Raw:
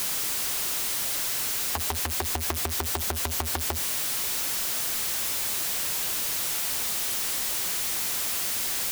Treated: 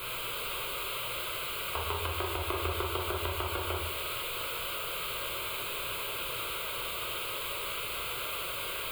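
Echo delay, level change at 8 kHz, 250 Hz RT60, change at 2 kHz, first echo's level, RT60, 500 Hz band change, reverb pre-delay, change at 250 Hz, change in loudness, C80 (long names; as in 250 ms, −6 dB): no echo audible, −15.5 dB, 0.95 s, −1.5 dB, no echo audible, 1.1 s, +2.5 dB, 11 ms, −3.5 dB, −8.0 dB, 5.5 dB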